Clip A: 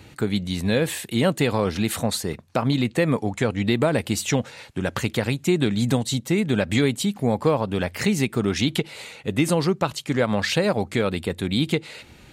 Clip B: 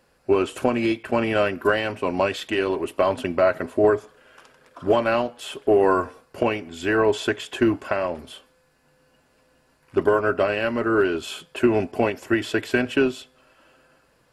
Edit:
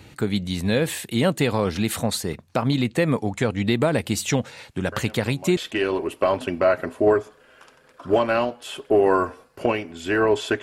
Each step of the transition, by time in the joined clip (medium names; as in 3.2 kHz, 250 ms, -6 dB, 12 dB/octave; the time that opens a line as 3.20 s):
clip A
4.92 s: add clip B from 1.69 s 0.65 s -17.5 dB
5.57 s: go over to clip B from 2.34 s